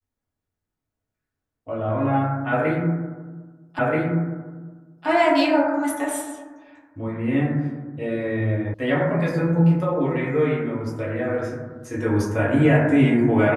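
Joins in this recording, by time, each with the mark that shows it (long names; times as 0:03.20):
0:03.79: the same again, the last 1.28 s
0:08.74: cut off before it has died away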